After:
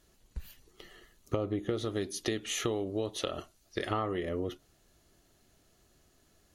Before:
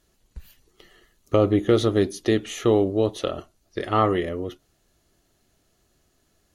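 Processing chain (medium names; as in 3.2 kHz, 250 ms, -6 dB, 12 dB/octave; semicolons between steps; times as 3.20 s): 1.85–3.91 s: tilt shelf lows -3.5 dB, about 1.4 kHz; compression 8:1, threshold -29 dBFS, peak gain reduction 16 dB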